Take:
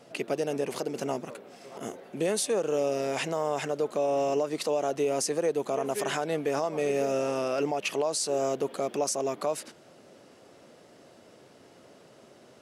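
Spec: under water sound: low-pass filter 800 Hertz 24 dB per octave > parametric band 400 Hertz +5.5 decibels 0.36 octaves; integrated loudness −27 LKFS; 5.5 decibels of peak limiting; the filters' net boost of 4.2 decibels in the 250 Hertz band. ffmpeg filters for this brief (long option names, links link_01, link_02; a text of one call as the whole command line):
ffmpeg -i in.wav -af "equalizer=frequency=250:width_type=o:gain=4,alimiter=limit=-22dB:level=0:latency=1,lowpass=frequency=800:width=0.5412,lowpass=frequency=800:width=1.3066,equalizer=frequency=400:width_type=o:width=0.36:gain=5.5,volume=3.5dB" out.wav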